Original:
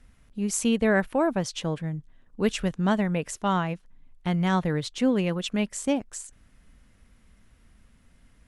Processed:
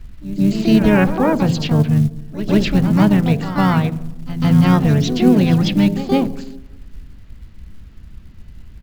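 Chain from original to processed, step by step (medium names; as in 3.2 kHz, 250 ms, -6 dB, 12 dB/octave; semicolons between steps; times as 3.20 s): pre-echo 145 ms -14 dB; resampled via 11.025 kHz; hum notches 60/120/180/240/300/360/420/480/540 Hz; on a send at -19 dB: reverberation RT60 1.1 s, pre-delay 3 ms; on the sum: harmony voices -7 st -15 dB, -3 st -15 dB, +7 st -5 dB; tone controls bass +12 dB, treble +3 dB; in parallel at +1 dB: peak limiter -14.5 dBFS, peak gain reduction 10 dB; on the sum: short-mantissa float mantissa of 4-bit; speed mistake 25 fps video run at 24 fps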